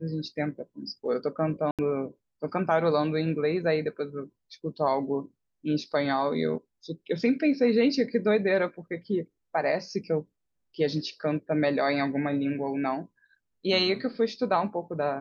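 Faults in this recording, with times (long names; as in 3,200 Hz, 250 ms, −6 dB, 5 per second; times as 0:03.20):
0:01.71–0:01.79: drop-out 77 ms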